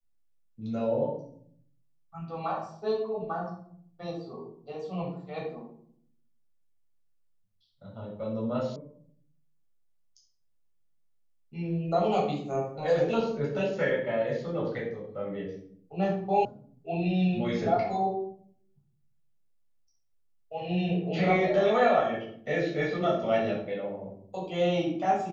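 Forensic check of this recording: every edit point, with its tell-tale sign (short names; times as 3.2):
8.76 sound cut off
16.45 sound cut off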